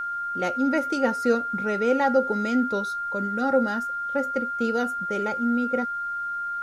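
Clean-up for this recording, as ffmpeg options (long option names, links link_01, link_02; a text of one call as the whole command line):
ffmpeg -i in.wav -af "bandreject=frequency=1400:width=30,agate=range=-21dB:threshold=-22dB" out.wav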